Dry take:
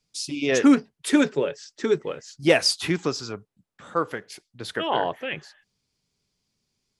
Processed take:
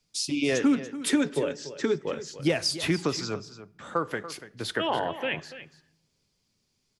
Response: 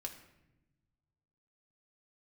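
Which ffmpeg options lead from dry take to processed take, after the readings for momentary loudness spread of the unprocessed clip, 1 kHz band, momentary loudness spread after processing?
16 LU, -4.0 dB, 11 LU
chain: -filter_complex "[0:a]acrossover=split=170[s0][s1];[s1]acompressor=threshold=0.0562:ratio=6[s2];[s0][s2]amix=inputs=2:normalize=0,aecho=1:1:287:0.2,asplit=2[s3][s4];[1:a]atrim=start_sample=2205,asetrate=52920,aresample=44100[s5];[s4][s5]afir=irnorm=-1:irlink=0,volume=0.422[s6];[s3][s6]amix=inputs=2:normalize=0"

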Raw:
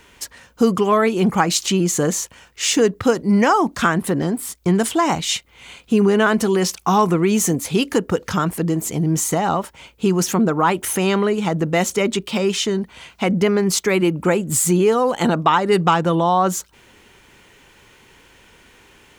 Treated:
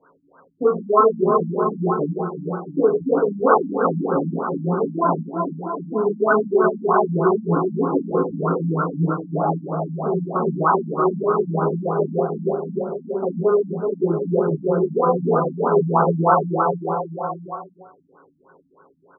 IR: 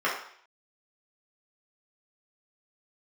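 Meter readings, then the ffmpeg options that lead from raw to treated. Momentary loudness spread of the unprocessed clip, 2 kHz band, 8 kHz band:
7 LU, -7.5 dB, under -40 dB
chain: -filter_complex "[0:a]aecho=1:1:380|684|927.2|1122|1277:0.631|0.398|0.251|0.158|0.1[s0];[1:a]atrim=start_sample=2205[s1];[s0][s1]afir=irnorm=-1:irlink=0,afftfilt=real='re*lt(b*sr/1024,280*pow(1600/280,0.5+0.5*sin(2*PI*3.2*pts/sr)))':imag='im*lt(b*sr/1024,280*pow(1600/280,0.5+0.5*sin(2*PI*3.2*pts/sr)))':win_size=1024:overlap=0.75,volume=0.251"

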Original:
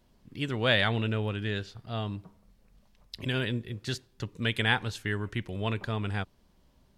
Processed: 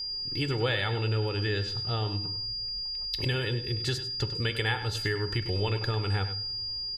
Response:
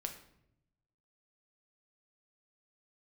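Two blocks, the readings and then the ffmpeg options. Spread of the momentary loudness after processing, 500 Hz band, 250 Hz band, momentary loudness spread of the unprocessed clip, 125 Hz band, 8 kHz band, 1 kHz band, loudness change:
3 LU, +1.5 dB, -3.0 dB, 13 LU, +3.0 dB, +3.5 dB, -0.5 dB, +1.0 dB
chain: -filter_complex "[0:a]aeval=exprs='val(0)+0.00891*sin(2*PI*4800*n/s)':c=same,acompressor=threshold=0.0224:ratio=6,aecho=1:1:2.3:0.67,asplit=2[s0][s1];[s1]adelay=99.13,volume=0.282,highshelf=f=4000:g=-2.23[s2];[s0][s2]amix=inputs=2:normalize=0,asplit=2[s3][s4];[1:a]atrim=start_sample=2205,lowshelf=f=220:g=5.5[s5];[s4][s5]afir=irnorm=-1:irlink=0,volume=0.75[s6];[s3][s6]amix=inputs=2:normalize=0,volume=1.19"

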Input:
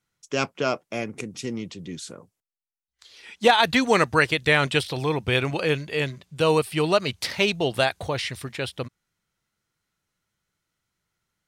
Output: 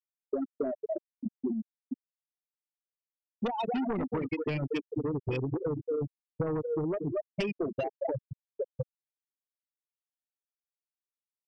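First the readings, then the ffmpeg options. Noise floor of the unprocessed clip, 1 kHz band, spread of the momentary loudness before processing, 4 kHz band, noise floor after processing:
-84 dBFS, -14.0 dB, 14 LU, -23.5 dB, under -85 dBFS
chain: -filter_complex "[0:a]adynamicequalizer=threshold=0.0126:dfrequency=300:dqfactor=2.4:tfrequency=300:tqfactor=2.4:attack=5:release=100:ratio=0.375:range=2.5:mode=boostabove:tftype=bell,highpass=f=52:p=1,equalizer=f=3400:w=7.9:g=-5,aecho=1:1:227|454|681|908|1135:0.422|0.169|0.0675|0.027|0.0108,afftfilt=real='re*gte(hypot(re,im),0.355)':imag='im*gte(hypot(re,im),0.355)':win_size=1024:overlap=0.75,acrossover=split=270|3000[s0][s1][s2];[s1]acompressor=threshold=0.0501:ratio=10[s3];[s0][s3][s2]amix=inputs=3:normalize=0,asuperstop=centerf=1600:order=4:qfactor=1.4,aeval=exprs='0.211*sin(PI/2*2*val(0)/0.211)':c=same,acompressor=threshold=0.0355:ratio=12"

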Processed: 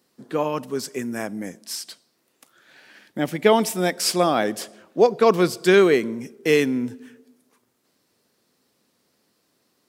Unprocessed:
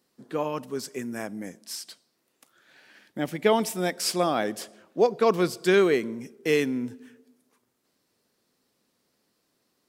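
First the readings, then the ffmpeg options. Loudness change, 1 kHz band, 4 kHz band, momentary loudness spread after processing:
+5.0 dB, +5.0 dB, +5.0 dB, 15 LU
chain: -af "highpass=53,volume=1.78"

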